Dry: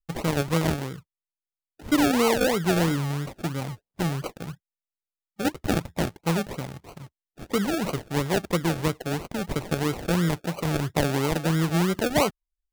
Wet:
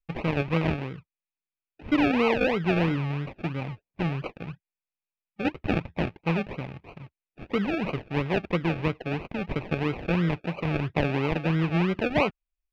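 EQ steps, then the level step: distance through air 310 m; peaking EQ 2.5 kHz +11.5 dB 0.36 oct; band-stop 1.4 kHz, Q 20; -1.0 dB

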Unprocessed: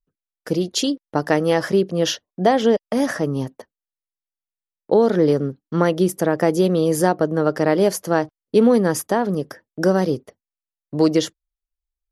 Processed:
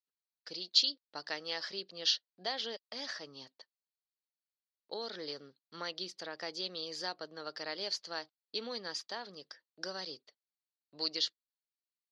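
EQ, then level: band-pass filter 4.4 kHz, Q 6; distance through air 150 m; +8.5 dB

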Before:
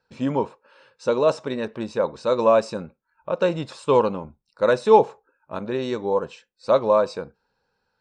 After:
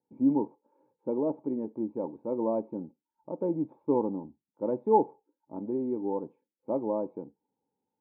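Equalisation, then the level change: cascade formant filter u; high-pass 120 Hz; +4.0 dB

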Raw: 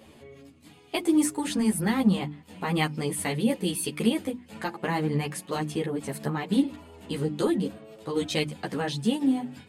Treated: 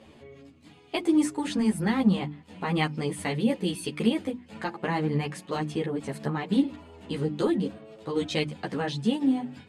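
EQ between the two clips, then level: distance through air 61 m; 0.0 dB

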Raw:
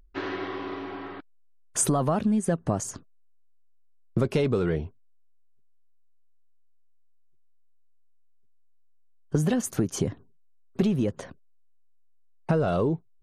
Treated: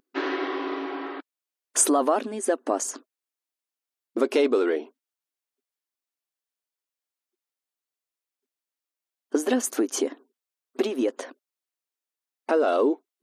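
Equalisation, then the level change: brick-wall FIR high-pass 240 Hz; +4.5 dB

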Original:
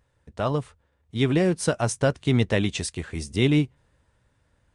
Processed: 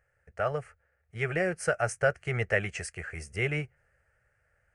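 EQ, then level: peaking EQ 1.5 kHz +11 dB 2.4 oct; static phaser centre 1 kHz, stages 6; -7.0 dB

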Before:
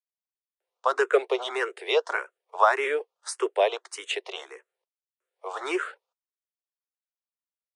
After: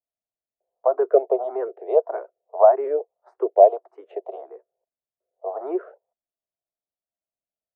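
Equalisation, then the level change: resonant low-pass 670 Hz, resonance Q 6.9; bass shelf 450 Hz +12 dB; -7.0 dB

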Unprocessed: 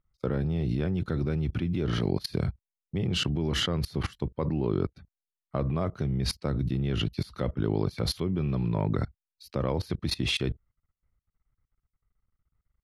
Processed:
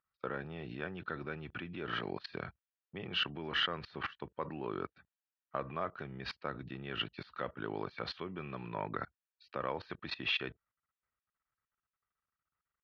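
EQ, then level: band-pass filter 1.9 kHz, Q 1.3; distance through air 270 m; band-stop 2.1 kHz, Q 6.5; +6.0 dB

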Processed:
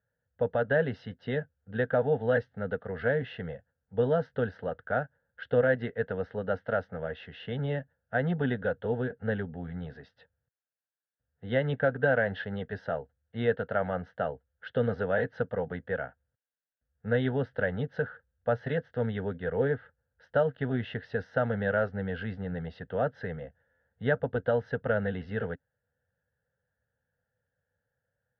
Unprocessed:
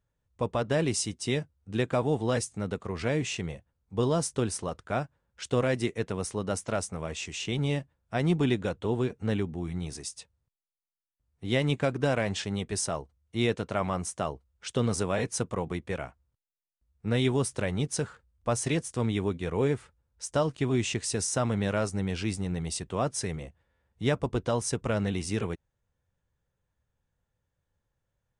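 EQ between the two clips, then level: distance through air 51 m; cabinet simulation 100–2700 Hz, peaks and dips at 270 Hz +10 dB, 480 Hz +8 dB, 1.6 kHz +10 dB; static phaser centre 1.6 kHz, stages 8; 0.0 dB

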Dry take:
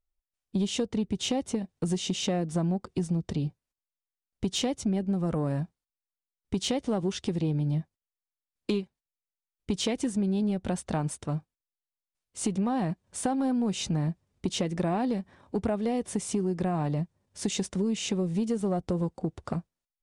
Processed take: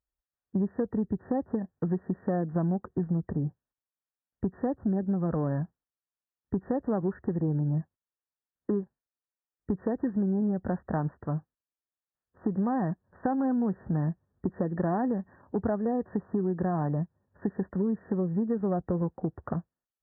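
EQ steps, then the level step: high-pass 47 Hz; brick-wall FIR low-pass 1.9 kHz; 0.0 dB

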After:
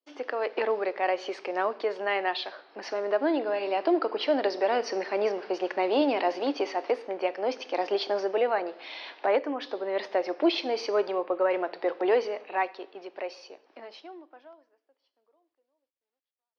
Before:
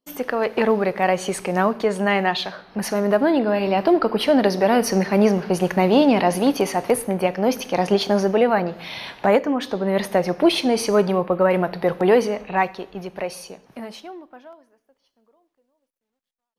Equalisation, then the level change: Chebyshev band-pass 300–5200 Hz, order 4; -7.0 dB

